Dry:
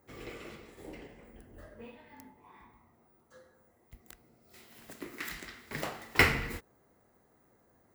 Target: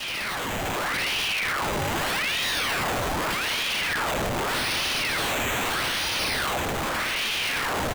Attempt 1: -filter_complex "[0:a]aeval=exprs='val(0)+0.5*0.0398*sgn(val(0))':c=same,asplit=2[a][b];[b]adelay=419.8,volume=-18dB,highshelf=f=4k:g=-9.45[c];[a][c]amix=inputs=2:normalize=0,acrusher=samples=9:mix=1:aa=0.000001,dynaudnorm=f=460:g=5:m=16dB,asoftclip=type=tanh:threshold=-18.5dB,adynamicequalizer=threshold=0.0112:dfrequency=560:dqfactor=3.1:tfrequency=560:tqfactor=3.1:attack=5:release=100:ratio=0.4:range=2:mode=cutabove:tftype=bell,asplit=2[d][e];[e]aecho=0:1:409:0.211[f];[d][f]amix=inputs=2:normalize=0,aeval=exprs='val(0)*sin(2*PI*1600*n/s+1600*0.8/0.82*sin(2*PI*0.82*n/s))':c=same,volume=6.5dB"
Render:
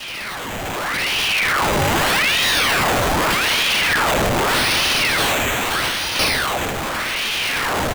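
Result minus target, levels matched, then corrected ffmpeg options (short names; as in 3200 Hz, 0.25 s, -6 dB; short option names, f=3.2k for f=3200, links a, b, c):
soft clip: distortion -7 dB
-filter_complex "[0:a]aeval=exprs='val(0)+0.5*0.0398*sgn(val(0))':c=same,asplit=2[a][b];[b]adelay=419.8,volume=-18dB,highshelf=f=4k:g=-9.45[c];[a][c]amix=inputs=2:normalize=0,acrusher=samples=9:mix=1:aa=0.000001,dynaudnorm=f=460:g=5:m=16dB,asoftclip=type=tanh:threshold=-29.5dB,adynamicequalizer=threshold=0.0112:dfrequency=560:dqfactor=3.1:tfrequency=560:tqfactor=3.1:attack=5:release=100:ratio=0.4:range=2:mode=cutabove:tftype=bell,asplit=2[d][e];[e]aecho=0:1:409:0.211[f];[d][f]amix=inputs=2:normalize=0,aeval=exprs='val(0)*sin(2*PI*1600*n/s+1600*0.8/0.82*sin(2*PI*0.82*n/s))':c=same,volume=6.5dB"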